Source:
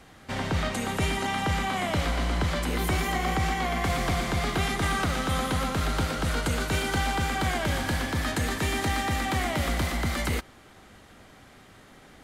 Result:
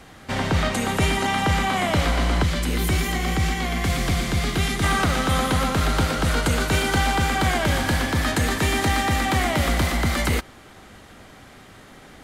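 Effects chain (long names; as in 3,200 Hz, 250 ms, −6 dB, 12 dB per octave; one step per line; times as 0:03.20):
0:02.43–0:04.84: parametric band 860 Hz −8 dB 2 octaves
level +6 dB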